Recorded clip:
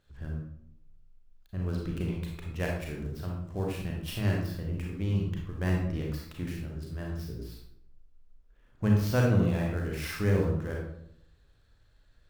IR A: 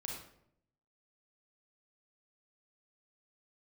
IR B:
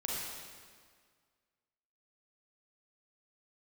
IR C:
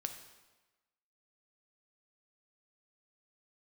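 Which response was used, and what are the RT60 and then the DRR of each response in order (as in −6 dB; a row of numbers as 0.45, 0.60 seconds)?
A; 0.70, 1.8, 1.2 seconds; −1.5, −4.5, 6.0 decibels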